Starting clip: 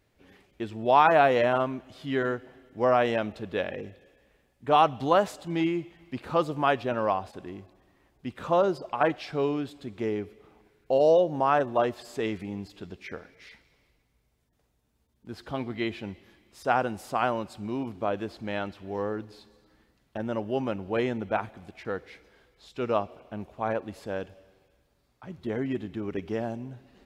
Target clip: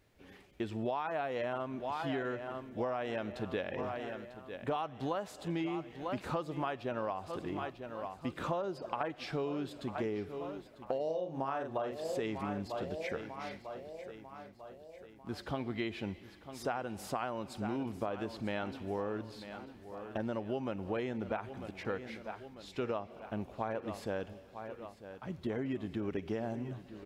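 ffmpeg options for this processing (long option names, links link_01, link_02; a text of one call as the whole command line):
ffmpeg -i in.wav -filter_complex "[0:a]asettb=1/sr,asplit=3[link_01][link_02][link_03];[link_01]atrim=end=11.034[link_04];[link_02]atrim=start=11.03:end=12.04,asetpts=PTS-STARTPTS,afade=type=in:duration=0.004:curve=qsin,afade=type=out:start_time=1.006:duration=0.004:curve=qsin,asplit=2[link_05][link_06];[link_06]adelay=44,volume=-5dB[link_07];[link_05][link_07]amix=inputs=2:normalize=0,atrim=end_sample=44541[link_08];[link_03]atrim=start=12.036[link_09];[link_04][link_08]acrossfade=duration=0.004:curve1=hsin:curve2=qsin[link_10];[link_10][link_09]acrossfade=duration=0.004:curve1=qsin:curve2=hsin,aecho=1:1:946|1892|2838|3784:0.158|0.0777|0.0381|0.0186,acompressor=threshold=-32dB:ratio=16" out.wav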